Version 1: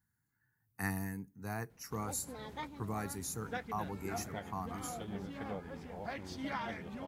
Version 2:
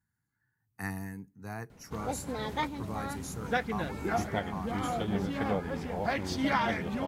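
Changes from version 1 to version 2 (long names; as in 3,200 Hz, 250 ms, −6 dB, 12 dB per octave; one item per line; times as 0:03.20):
speech: add high-shelf EQ 12,000 Hz −10.5 dB
background +11.0 dB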